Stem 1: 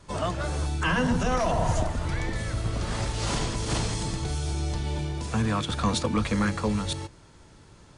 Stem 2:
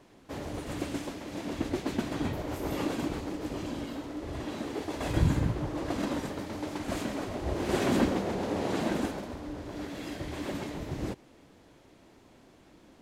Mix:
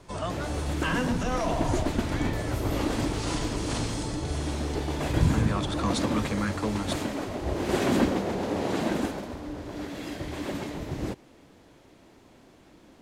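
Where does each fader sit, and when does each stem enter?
-3.5, +2.5 dB; 0.00, 0.00 s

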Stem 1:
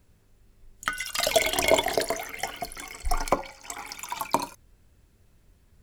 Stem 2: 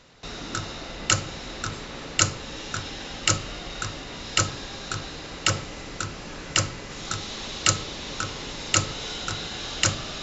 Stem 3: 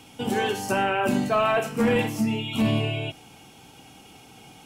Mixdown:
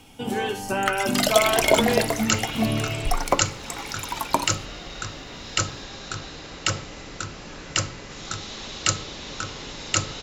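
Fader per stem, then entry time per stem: +2.5, -1.5, -1.5 dB; 0.00, 1.20, 0.00 s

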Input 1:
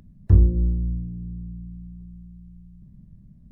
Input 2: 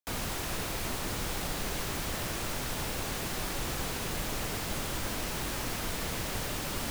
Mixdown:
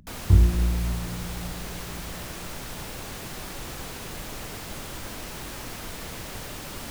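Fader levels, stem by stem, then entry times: -2.0, -2.5 dB; 0.00, 0.00 s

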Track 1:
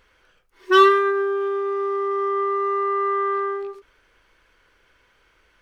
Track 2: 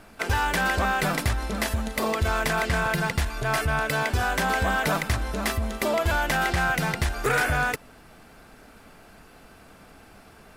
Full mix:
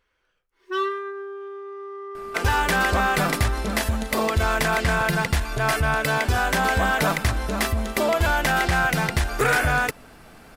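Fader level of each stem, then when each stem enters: -12.0, +3.0 dB; 0.00, 2.15 s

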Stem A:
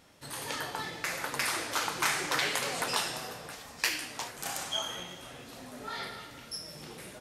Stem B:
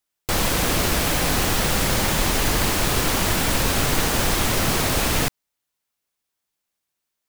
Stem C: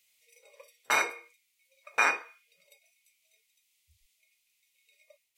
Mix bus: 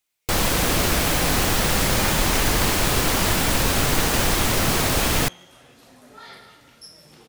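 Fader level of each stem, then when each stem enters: -4.0, +0.5, -11.5 dB; 0.30, 0.00, 0.00 s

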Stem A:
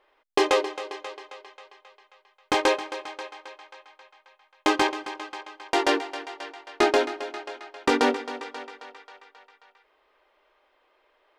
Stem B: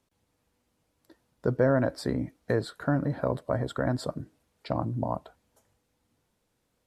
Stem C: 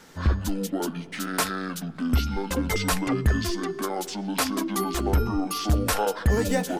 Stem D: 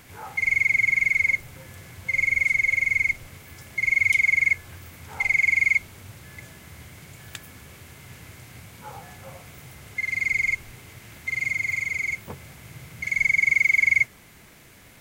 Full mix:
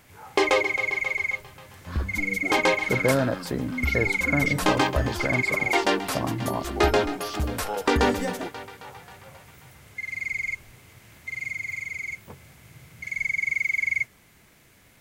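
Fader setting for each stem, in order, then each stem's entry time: -0.5, +0.5, -5.5, -6.0 dB; 0.00, 1.45, 1.70, 0.00 s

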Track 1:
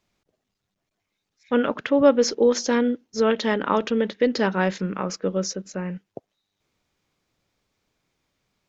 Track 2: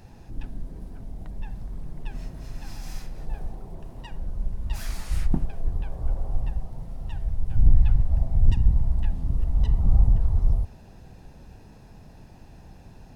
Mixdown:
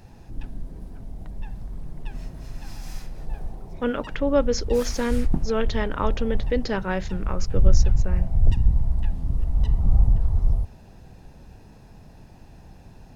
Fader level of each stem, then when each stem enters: -4.5, +0.5 dB; 2.30, 0.00 s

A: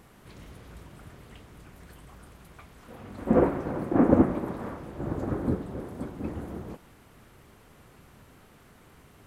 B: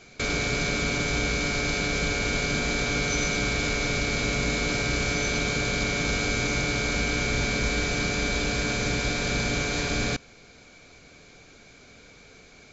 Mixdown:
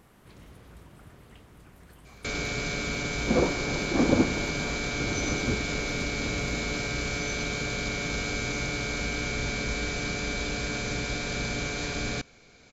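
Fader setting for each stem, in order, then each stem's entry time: -3.0, -4.5 dB; 0.00, 2.05 s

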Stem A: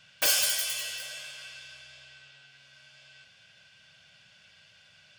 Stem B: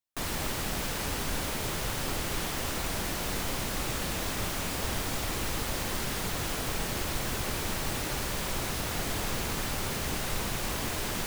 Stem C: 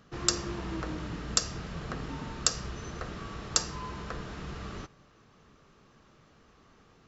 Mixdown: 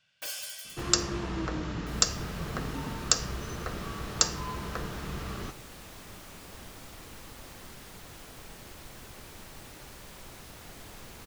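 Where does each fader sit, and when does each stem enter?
-13.5, -15.0, +2.5 dB; 0.00, 1.70, 0.65 s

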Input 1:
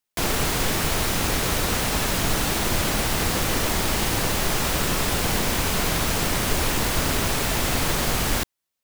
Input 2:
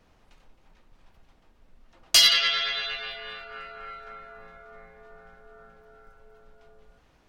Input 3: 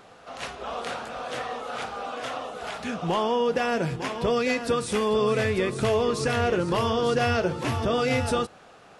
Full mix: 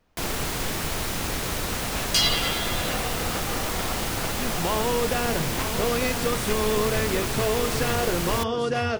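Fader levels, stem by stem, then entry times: -5.0, -5.0, -2.0 dB; 0.00, 0.00, 1.55 s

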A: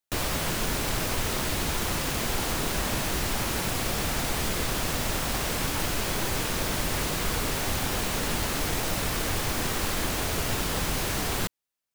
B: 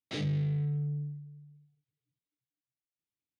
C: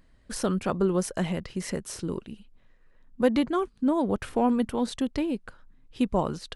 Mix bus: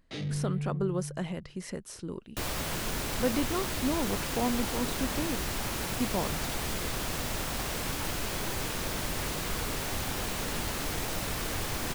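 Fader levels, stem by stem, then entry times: -5.0, -2.5, -6.5 dB; 2.25, 0.00, 0.00 s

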